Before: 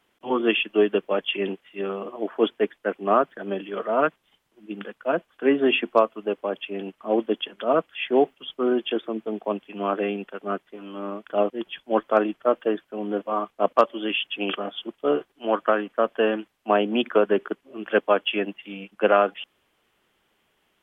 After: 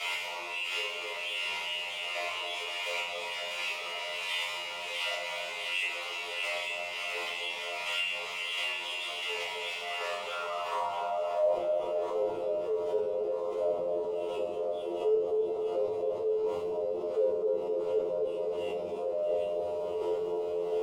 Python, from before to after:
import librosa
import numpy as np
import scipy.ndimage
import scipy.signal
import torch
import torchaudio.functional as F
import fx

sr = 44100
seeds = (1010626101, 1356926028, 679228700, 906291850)

p1 = np.sign(x) * np.sqrt(np.mean(np.square(x)))
p2 = fx.fixed_phaser(p1, sr, hz=680.0, stages=4)
p3 = fx.comb_fb(p2, sr, f0_hz=87.0, decay_s=0.48, harmonics='all', damping=0.0, mix_pct=100)
p4 = fx.filter_sweep_bandpass(p3, sr, from_hz=2200.0, to_hz=400.0, start_s=9.74, end_s=12.05, q=3.5)
p5 = fx.chopper(p4, sr, hz=1.4, depth_pct=60, duty_pct=20)
p6 = p5 + fx.echo_split(p5, sr, split_hz=1000.0, low_ms=261, high_ms=650, feedback_pct=52, wet_db=-6.0, dry=0)
p7 = fx.room_shoebox(p6, sr, seeds[0], volume_m3=39.0, walls='mixed', distance_m=1.5)
p8 = fx.env_flatten(p7, sr, amount_pct=50)
y = F.gain(torch.from_numpy(p8), 2.0).numpy()